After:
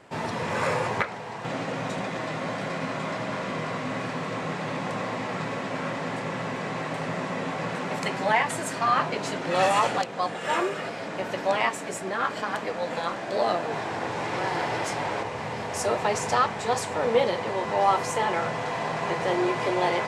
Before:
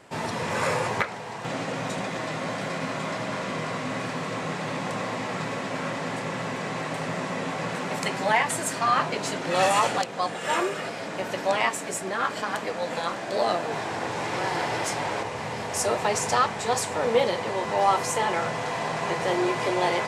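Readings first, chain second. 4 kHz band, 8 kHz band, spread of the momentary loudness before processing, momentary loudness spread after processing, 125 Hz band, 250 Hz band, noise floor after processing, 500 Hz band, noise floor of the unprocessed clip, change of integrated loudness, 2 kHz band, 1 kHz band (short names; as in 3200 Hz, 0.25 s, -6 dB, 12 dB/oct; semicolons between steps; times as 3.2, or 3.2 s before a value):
-2.5 dB, -5.0 dB, 8 LU, 7 LU, 0.0 dB, 0.0 dB, -35 dBFS, 0.0 dB, -34 dBFS, -0.5 dB, -1.0 dB, 0.0 dB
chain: high shelf 5500 Hz -8 dB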